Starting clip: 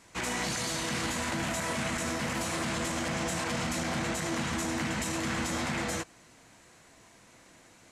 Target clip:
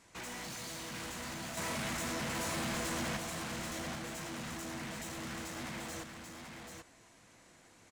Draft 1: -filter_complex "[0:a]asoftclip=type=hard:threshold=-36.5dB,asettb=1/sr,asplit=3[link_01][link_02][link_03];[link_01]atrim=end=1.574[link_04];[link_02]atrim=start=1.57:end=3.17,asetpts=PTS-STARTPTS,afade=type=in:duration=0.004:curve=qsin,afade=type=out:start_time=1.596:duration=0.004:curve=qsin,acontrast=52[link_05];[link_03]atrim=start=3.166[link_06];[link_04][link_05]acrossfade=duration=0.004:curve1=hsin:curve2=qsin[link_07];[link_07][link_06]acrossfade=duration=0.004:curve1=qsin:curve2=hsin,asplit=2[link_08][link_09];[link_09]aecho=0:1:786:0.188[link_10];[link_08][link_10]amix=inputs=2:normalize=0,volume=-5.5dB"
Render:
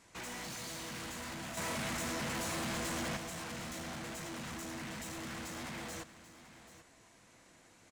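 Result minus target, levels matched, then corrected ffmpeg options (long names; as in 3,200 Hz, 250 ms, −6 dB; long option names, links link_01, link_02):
echo-to-direct −9 dB
-filter_complex "[0:a]asoftclip=type=hard:threshold=-36.5dB,asettb=1/sr,asplit=3[link_01][link_02][link_03];[link_01]atrim=end=1.574[link_04];[link_02]atrim=start=1.57:end=3.17,asetpts=PTS-STARTPTS,afade=type=in:duration=0.004:curve=qsin,afade=type=out:start_time=1.596:duration=0.004:curve=qsin,acontrast=52[link_05];[link_03]atrim=start=3.166[link_06];[link_04][link_05]acrossfade=duration=0.004:curve1=hsin:curve2=qsin[link_07];[link_07][link_06]acrossfade=duration=0.004:curve1=qsin:curve2=hsin,asplit=2[link_08][link_09];[link_09]aecho=0:1:786:0.531[link_10];[link_08][link_10]amix=inputs=2:normalize=0,volume=-5.5dB"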